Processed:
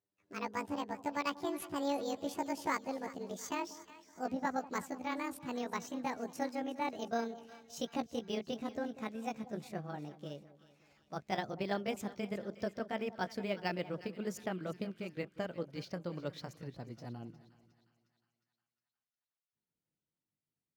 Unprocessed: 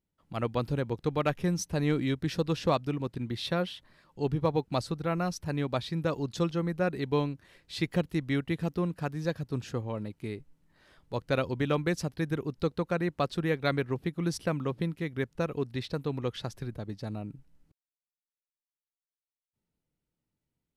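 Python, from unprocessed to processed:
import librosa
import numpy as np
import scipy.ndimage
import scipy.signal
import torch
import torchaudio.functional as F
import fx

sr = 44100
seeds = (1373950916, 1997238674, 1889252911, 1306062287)

p1 = fx.pitch_glide(x, sr, semitones=12.0, runs='ending unshifted')
p2 = scipy.signal.sosfilt(scipy.signal.butter(2, 89.0, 'highpass', fs=sr, output='sos'), p1)
p3 = p2 + fx.echo_split(p2, sr, split_hz=1100.0, low_ms=189, high_ms=359, feedback_pct=52, wet_db=-16, dry=0)
p4 = np.interp(np.arange(len(p3)), np.arange(len(p3))[::2], p3[::2])
y = p4 * librosa.db_to_amplitude(-7.0)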